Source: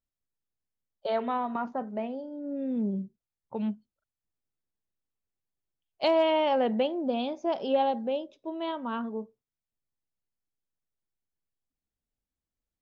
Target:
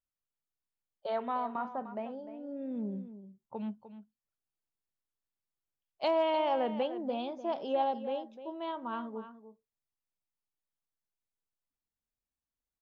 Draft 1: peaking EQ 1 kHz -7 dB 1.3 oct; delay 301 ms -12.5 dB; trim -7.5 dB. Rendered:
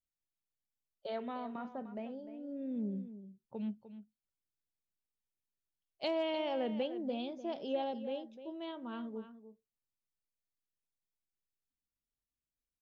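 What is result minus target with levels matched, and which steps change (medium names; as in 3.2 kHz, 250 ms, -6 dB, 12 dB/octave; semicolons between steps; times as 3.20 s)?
1 kHz band -5.0 dB
change: peaking EQ 1 kHz +5 dB 1.3 oct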